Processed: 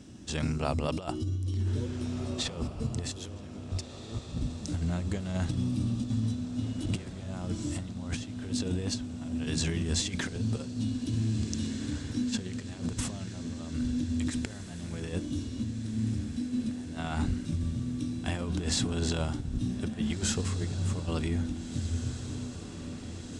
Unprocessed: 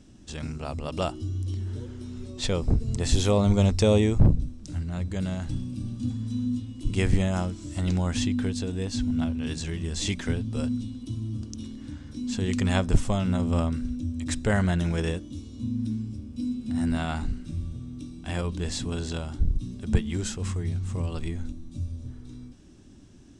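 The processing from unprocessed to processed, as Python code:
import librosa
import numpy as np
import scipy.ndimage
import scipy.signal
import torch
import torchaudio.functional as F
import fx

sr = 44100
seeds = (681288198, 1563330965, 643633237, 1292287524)

y = scipy.signal.sosfilt(scipy.signal.butter(2, 70.0, 'highpass', fs=sr, output='sos'), x)
y = fx.over_compress(y, sr, threshold_db=-32.0, ratio=-0.5)
y = fx.echo_diffused(y, sr, ms=1772, feedback_pct=68, wet_db=-11.5)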